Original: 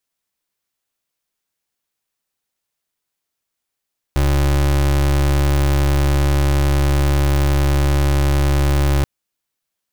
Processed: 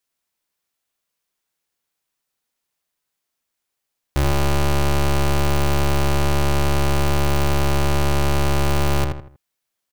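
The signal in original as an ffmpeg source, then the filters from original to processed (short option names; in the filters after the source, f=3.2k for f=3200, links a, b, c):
-f lavfi -i "aevalsrc='0.178*(2*lt(mod(70.6*t,1),0.31)-1)':d=4.88:s=44100"
-filter_complex "[0:a]lowshelf=f=350:g=-2.5,asplit=2[a][b];[b]adelay=80,lowpass=f=2.5k:p=1,volume=-4dB,asplit=2[c][d];[d]adelay=80,lowpass=f=2.5k:p=1,volume=0.35,asplit=2[e][f];[f]adelay=80,lowpass=f=2.5k:p=1,volume=0.35,asplit=2[g][h];[h]adelay=80,lowpass=f=2.5k:p=1,volume=0.35[i];[a][c][e][g][i]amix=inputs=5:normalize=0"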